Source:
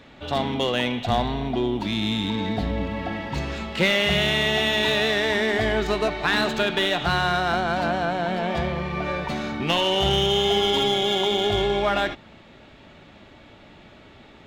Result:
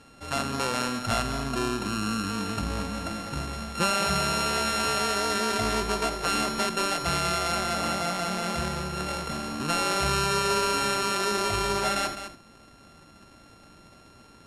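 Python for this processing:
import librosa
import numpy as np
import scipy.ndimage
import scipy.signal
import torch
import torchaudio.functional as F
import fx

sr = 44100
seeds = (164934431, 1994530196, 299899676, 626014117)

y = np.r_[np.sort(x[:len(x) // 32 * 32].reshape(-1, 32), axis=1).ravel(), x[len(x) // 32 * 32:]]
y = scipy.signal.sosfilt(scipy.signal.butter(4, 11000.0, 'lowpass', fs=sr, output='sos'), y)
y = y + 10.0 ** (-10.0 / 20.0) * np.pad(y, (int(207 * sr / 1000.0), 0))[:len(y)]
y = F.gain(torch.from_numpy(y), -4.5).numpy()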